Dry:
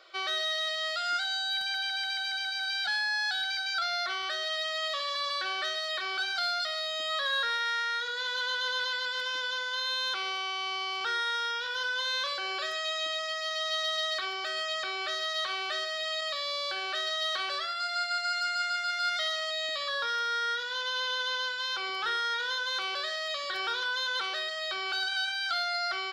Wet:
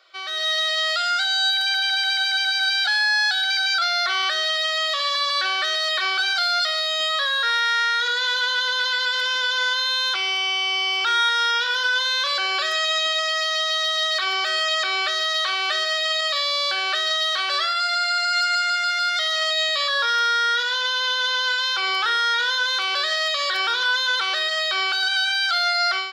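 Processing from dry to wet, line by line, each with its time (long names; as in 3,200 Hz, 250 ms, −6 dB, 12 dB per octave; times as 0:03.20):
0:02.00–0:05.33: parametric band 94 Hz −11 dB 1.1 octaves
0:10.15–0:11.29: comb filter 3 ms
whole clip: high-pass filter 750 Hz 6 dB per octave; automatic gain control gain up to 13.5 dB; brickwall limiter −13.5 dBFS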